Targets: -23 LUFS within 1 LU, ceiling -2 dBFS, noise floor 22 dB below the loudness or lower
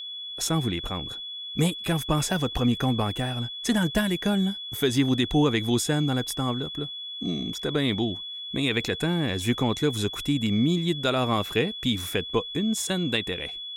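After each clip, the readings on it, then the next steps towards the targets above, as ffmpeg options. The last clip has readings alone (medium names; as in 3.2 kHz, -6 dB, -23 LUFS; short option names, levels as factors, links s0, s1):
steady tone 3.4 kHz; tone level -34 dBFS; loudness -26.0 LUFS; peak level -11.5 dBFS; loudness target -23.0 LUFS
-> -af "bandreject=f=3400:w=30"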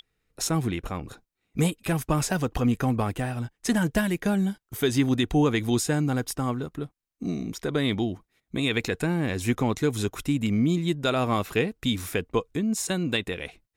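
steady tone not found; loudness -26.5 LUFS; peak level -12.0 dBFS; loudness target -23.0 LUFS
-> -af "volume=1.5"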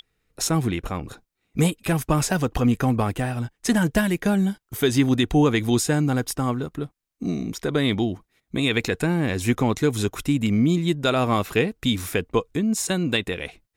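loudness -23.0 LUFS; peak level -8.5 dBFS; noise floor -77 dBFS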